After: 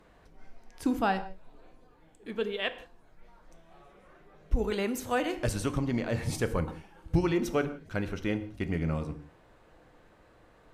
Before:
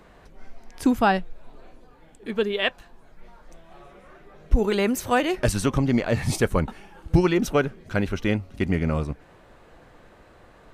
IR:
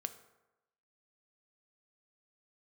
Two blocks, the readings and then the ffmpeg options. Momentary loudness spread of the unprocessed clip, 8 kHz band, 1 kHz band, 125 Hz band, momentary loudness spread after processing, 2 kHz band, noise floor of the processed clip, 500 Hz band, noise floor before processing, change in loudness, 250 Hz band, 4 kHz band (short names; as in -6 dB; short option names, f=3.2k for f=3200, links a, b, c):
7 LU, -8.0 dB, -7.5 dB, -7.0 dB, 11 LU, -8.0 dB, -60 dBFS, -7.5 dB, -53 dBFS, -7.5 dB, -7.5 dB, -8.0 dB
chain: -filter_complex "[1:a]atrim=start_sample=2205,afade=t=out:st=0.17:d=0.01,atrim=end_sample=7938,asetrate=29988,aresample=44100[a];[0:a][a]afir=irnorm=-1:irlink=0,volume=-8dB"